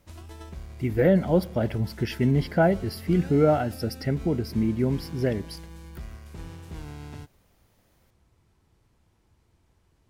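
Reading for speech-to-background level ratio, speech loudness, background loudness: 17.0 dB, -25.0 LUFS, -42.0 LUFS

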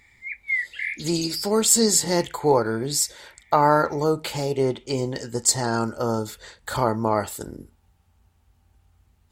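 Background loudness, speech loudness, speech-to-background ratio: -28.5 LUFS, -22.5 LUFS, 6.0 dB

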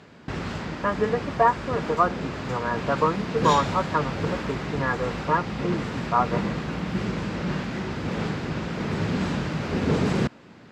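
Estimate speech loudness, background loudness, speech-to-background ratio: -26.0 LUFS, -29.0 LUFS, 3.0 dB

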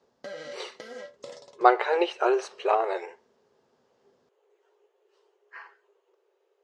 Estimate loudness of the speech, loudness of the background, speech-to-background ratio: -25.0 LUFS, -43.0 LUFS, 18.0 dB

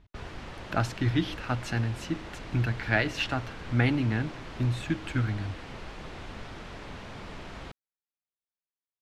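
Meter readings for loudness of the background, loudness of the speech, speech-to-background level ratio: -43.0 LUFS, -30.0 LUFS, 13.0 dB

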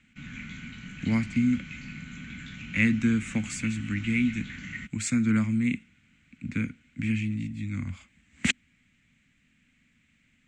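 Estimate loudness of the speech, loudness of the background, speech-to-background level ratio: -28.5 LUFS, -40.5 LUFS, 12.0 dB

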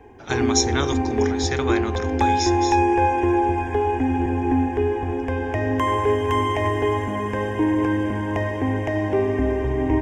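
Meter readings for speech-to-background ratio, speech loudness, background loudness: -5.0 dB, -27.0 LUFS, -22.0 LUFS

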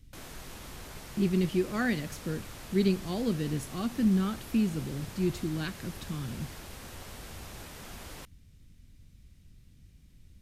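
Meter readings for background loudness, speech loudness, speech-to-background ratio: -45.5 LUFS, -31.5 LUFS, 14.0 dB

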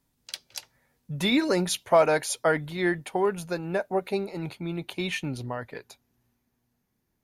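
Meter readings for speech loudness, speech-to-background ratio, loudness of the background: -27.0 LUFS, 12.5 dB, -39.5 LUFS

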